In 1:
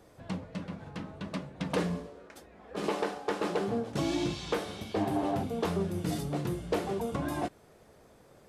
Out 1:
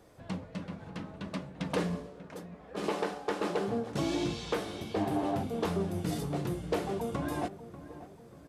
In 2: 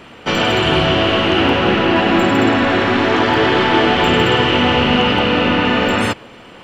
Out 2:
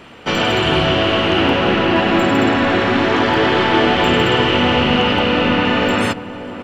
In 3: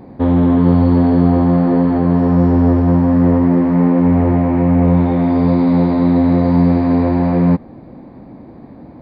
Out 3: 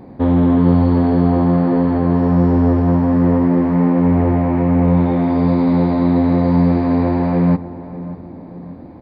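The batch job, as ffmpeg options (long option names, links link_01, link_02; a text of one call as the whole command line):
ffmpeg -i in.wav -filter_complex "[0:a]asplit=2[link_01][link_02];[link_02]adelay=590,lowpass=frequency=1300:poles=1,volume=-13.5dB,asplit=2[link_03][link_04];[link_04]adelay=590,lowpass=frequency=1300:poles=1,volume=0.51,asplit=2[link_05][link_06];[link_06]adelay=590,lowpass=frequency=1300:poles=1,volume=0.51,asplit=2[link_07][link_08];[link_08]adelay=590,lowpass=frequency=1300:poles=1,volume=0.51,asplit=2[link_09][link_10];[link_10]adelay=590,lowpass=frequency=1300:poles=1,volume=0.51[link_11];[link_01][link_03][link_05][link_07][link_09][link_11]amix=inputs=6:normalize=0,volume=-1dB" out.wav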